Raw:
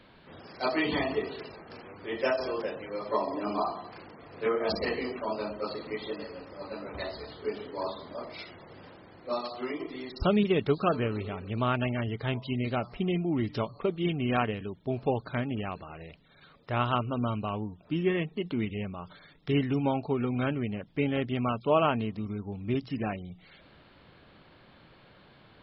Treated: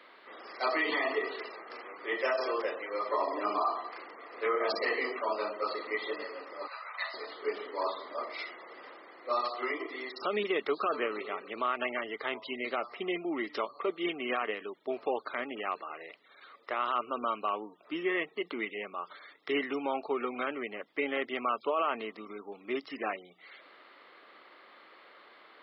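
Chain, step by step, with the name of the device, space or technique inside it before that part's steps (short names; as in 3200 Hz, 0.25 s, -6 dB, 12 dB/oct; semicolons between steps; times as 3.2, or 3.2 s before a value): 6.67–7.14 HPF 890 Hz 24 dB/oct; laptop speaker (HPF 340 Hz 24 dB/oct; bell 1200 Hz +9.5 dB 0.29 oct; bell 2000 Hz +10.5 dB 0.21 oct; limiter -20.5 dBFS, peak gain reduction 12 dB)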